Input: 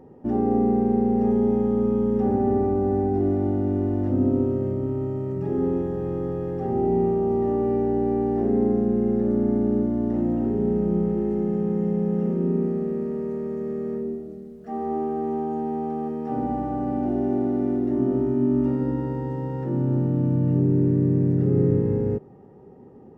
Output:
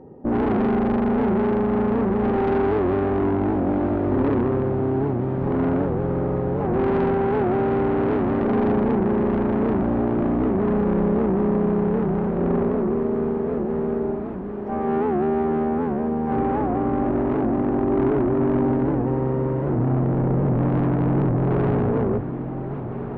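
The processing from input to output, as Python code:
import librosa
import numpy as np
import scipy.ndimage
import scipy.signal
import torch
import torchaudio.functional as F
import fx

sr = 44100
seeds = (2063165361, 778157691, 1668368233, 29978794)

p1 = fx.lowpass(x, sr, hz=1200.0, slope=6)
p2 = fx.hum_notches(p1, sr, base_hz=50, count=5)
p3 = fx.tube_stage(p2, sr, drive_db=26.0, bias=0.65)
p4 = p3 + fx.echo_diffused(p3, sr, ms=1360, feedback_pct=73, wet_db=-10.5, dry=0)
p5 = fx.record_warp(p4, sr, rpm=78.0, depth_cents=160.0)
y = F.gain(torch.from_numpy(p5), 8.5).numpy()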